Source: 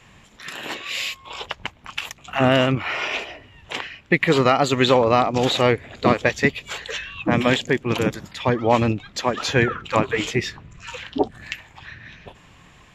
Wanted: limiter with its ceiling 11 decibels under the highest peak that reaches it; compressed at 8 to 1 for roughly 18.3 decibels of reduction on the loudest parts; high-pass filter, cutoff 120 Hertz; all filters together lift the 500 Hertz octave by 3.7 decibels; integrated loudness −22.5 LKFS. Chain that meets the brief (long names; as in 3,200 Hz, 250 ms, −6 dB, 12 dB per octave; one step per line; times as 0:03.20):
high-pass filter 120 Hz
parametric band 500 Hz +4.5 dB
downward compressor 8 to 1, threshold −29 dBFS
level +12.5 dB
brickwall limiter −9 dBFS